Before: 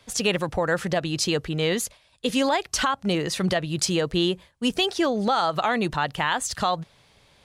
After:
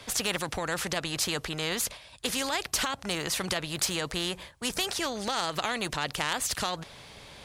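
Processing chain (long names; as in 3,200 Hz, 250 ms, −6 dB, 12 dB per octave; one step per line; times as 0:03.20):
harmonic generator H 3 −23 dB, 5 −33 dB, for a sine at −10 dBFS
every bin compressed towards the loudest bin 2 to 1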